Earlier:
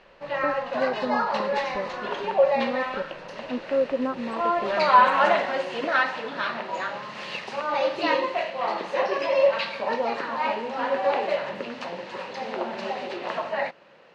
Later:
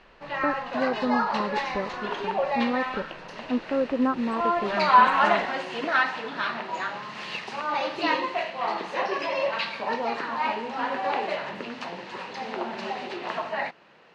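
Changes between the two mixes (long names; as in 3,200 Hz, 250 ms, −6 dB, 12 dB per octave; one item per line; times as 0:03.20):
speech +5.0 dB
master: add parametric band 550 Hz −9.5 dB 0.25 octaves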